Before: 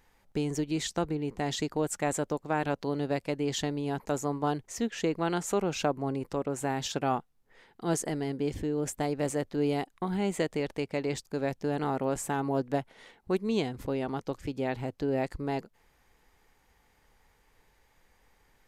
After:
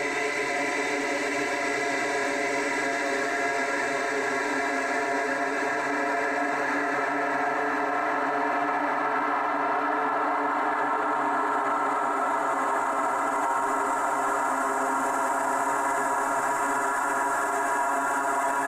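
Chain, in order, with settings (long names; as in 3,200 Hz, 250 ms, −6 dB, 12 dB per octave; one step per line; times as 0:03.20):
peak hold with a decay on every bin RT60 1.16 s
flat-topped bell 1,300 Hz +12.5 dB
extreme stretch with random phases 15×, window 1.00 s, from 0:11.13
bass and treble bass −13 dB, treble −3 dB
comb filter 3 ms, depth 76%
echo with a time of its own for lows and highs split 720 Hz, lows 389 ms, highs 127 ms, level −6 dB
brickwall limiter −17.5 dBFS, peak gain reduction 9.5 dB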